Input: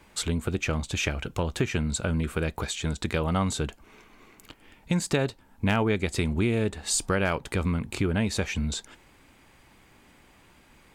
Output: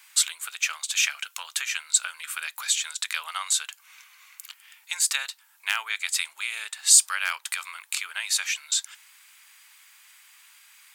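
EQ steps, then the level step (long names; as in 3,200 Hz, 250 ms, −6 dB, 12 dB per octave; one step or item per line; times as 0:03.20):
high-pass filter 1,100 Hz 24 dB per octave
spectral tilt +4 dB per octave
0.0 dB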